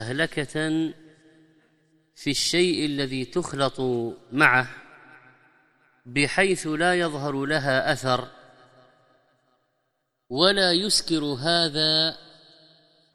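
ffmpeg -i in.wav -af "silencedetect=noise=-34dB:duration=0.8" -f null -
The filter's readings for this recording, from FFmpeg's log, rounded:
silence_start: 0.92
silence_end: 2.20 | silence_duration: 1.28
silence_start: 4.77
silence_end: 6.08 | silence_duration: 1.31
silence_start: 8.27
silence_end: 10.31 | silence_duration: 2.03
silence_start: 12.15
silence_end: 13.14 | silence_duration: 0.99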